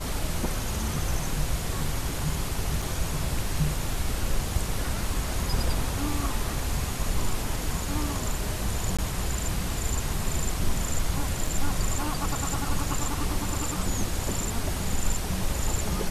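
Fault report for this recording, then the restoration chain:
2.82 s: dropout 4.3 ms
8.97–8.99 s: dropout 16 ms
11.47 s: dropout 4.4 ms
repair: interpolate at 2.82 s, 4.3 ms; interpolate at 8.97 s, 16 ms; interpolate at 11.47 s, 4.4 ms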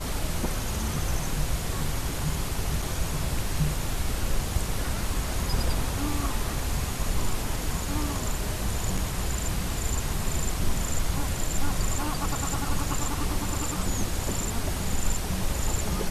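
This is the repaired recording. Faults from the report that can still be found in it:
nothing left

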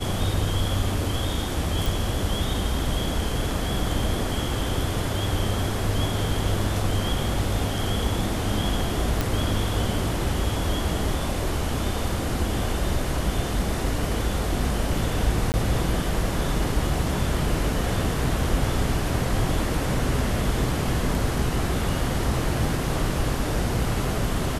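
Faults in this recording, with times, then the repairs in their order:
1.86 s: pop
9.21 s: pop
15.52–15.54 s: dropout 19 ms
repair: de-click; interpolate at 15.52 s, 19 ms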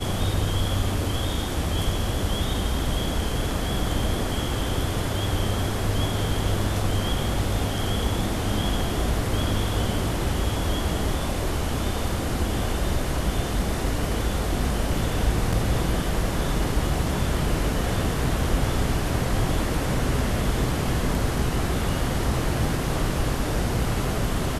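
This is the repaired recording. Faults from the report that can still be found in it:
nothing left

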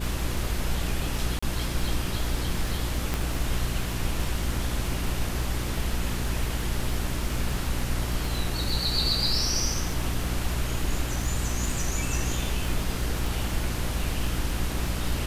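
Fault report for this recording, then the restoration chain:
crackle 37 per s -31 dBFS
hum 60 Hz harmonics 6 -31 dBFS
1.39–1.43 s: dropout 35 ms
3.14 s: pop -12 dBFS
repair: de-click; de-hum 60 Hz, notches 6; interpolate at 1.39 s, 35 ms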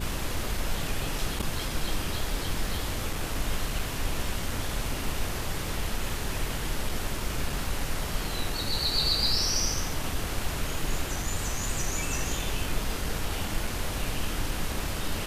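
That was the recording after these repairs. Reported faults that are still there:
3.14 s: pop

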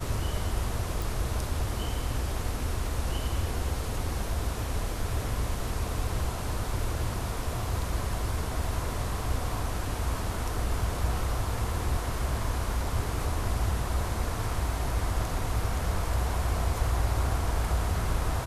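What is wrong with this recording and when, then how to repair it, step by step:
1.02 s: pop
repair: de-click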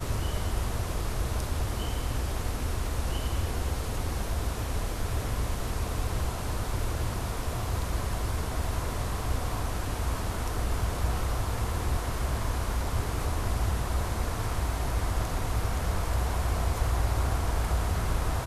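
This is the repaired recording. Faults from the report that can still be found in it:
nothing left

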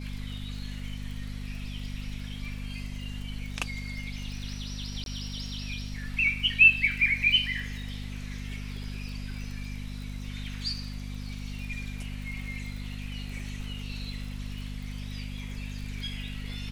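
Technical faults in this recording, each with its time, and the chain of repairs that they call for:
crackle 46 per s -38 dBFS
hum 50 Hz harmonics 5 -37 dBFS
5.04–5.06 s: dropout 22 ms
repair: de-click; de-hum 50 Hz, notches 5; interpolate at 5.04 s, 22 ms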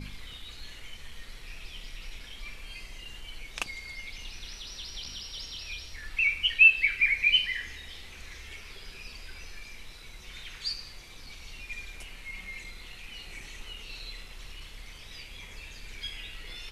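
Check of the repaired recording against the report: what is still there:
nothing left

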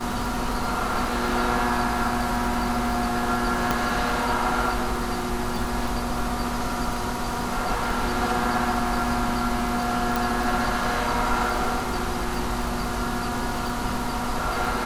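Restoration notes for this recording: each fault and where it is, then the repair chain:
crackle 47 per s -28 dBFS
3.71 s: pop
10.16 s: pop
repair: de-click

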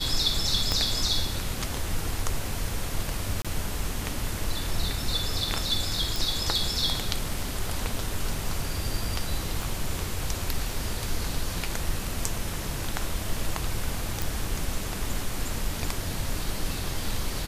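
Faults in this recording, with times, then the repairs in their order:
0.72 s: pop -11 dBFS
3.42–3.45 s: dropout 26 ms
6.16 s: pop
9.62 s: pop
14.22 s: pop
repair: de-click; interpolate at 3.42 s, 26 ms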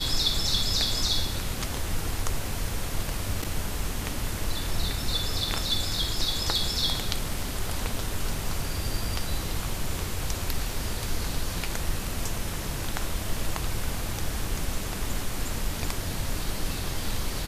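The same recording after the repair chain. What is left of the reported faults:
0.72 s: pop
9.62 s: pop

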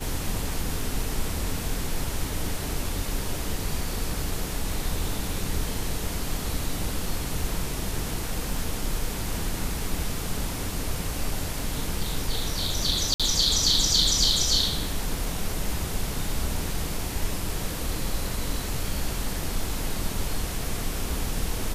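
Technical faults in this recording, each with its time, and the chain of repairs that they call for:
13.14–13.20 s: dropout 56 ms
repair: interpolate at 13.14 s, 56 ms

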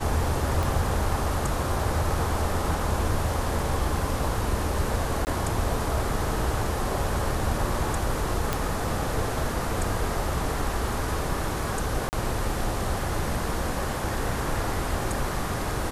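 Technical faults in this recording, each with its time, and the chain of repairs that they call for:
0.63 s: pop
5.25–5.27 s: dropout 19 ms
8.53 s: pop
12.09–12.13 s: dropout 39 ms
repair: de-click; interpolate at 5.25 s, 19 ms; interpolate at 12.09 s, 39 ms

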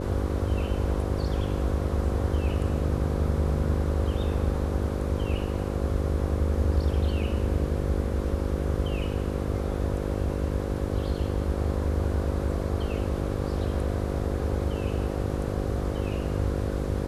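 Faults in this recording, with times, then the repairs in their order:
buzz 50 Hz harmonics 11 -31 dBFS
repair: de-hum 50 Hz, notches 11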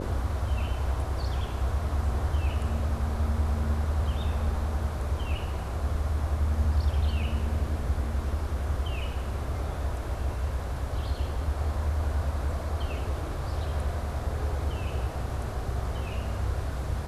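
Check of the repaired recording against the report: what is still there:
nothing left

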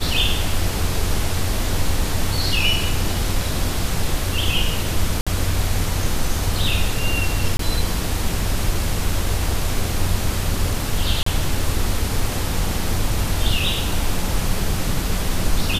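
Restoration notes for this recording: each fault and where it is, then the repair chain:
5.21–5.27 s: dropout 56 ms
7.57–7.59 s: dropout 23 ms
11.23–11.26 s: dropout 34 ms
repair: interpolate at 5.21 s, 56 ms; interpolate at 7.57 s, 23 ms; interpolate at 11.23 s, 34 ms

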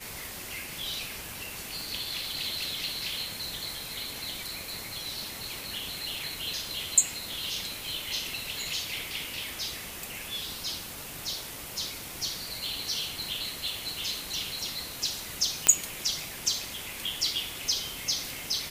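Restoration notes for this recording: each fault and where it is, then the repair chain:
1.81 s: pop
15.67 s: pop -4 dBFS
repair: de-click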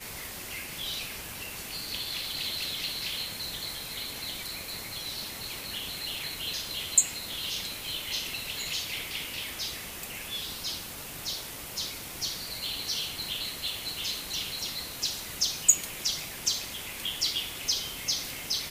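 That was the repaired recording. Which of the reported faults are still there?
nothing left

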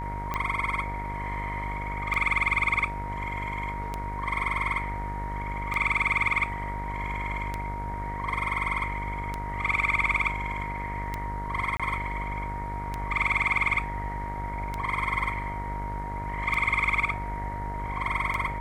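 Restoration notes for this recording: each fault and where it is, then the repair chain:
buzz 50 Hz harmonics 37 -35 dBFS
tick 33 1/3 rpm -16 dBFS
whine 940 Hz -34 dBFS
11.77–11.80 s: dropout 26 ms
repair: de-click; de-hum 50 Hz, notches 37; band-stop 940 Hz, Q 30; interpolate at 11.77 s, 26 ms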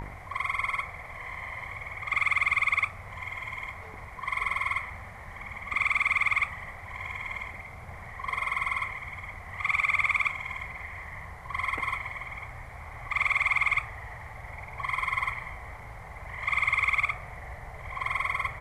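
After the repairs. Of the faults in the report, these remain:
nothing left

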